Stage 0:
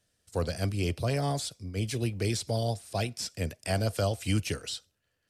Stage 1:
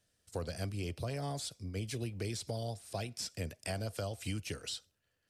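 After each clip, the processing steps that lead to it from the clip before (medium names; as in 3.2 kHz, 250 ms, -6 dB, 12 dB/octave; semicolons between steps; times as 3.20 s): compression 4:1, threshold -33 dBFS, peak gain reduction 10 dB; trim -2.5 dB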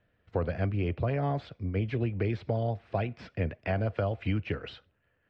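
low-pass 2.4 kHz 24 dB/octave; trim +9 dB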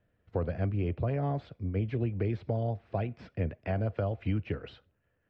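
tilt shelf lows +3.5 dB; trim -4 dB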